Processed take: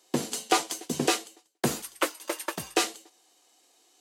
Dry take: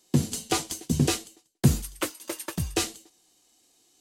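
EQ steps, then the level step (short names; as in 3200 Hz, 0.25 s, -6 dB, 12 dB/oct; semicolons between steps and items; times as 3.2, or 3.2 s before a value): HPF 500 Hz 12 dB/oct; high shelf 2700 Hz -9 dB; +7.5 dB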